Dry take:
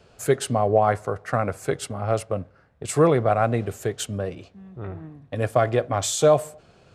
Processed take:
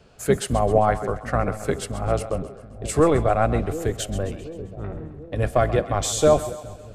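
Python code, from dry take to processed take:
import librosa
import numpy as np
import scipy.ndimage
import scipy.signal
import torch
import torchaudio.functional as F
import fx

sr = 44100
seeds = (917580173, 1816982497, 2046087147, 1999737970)

y = fx.octave_divider(x, sr, octaves=1, level_db=-1.0)
y = fx.echo_split(y, sr, split_hz=570.0, low_ms=734, high_ms=132, feedback_pct=52, wet_db=-13.0)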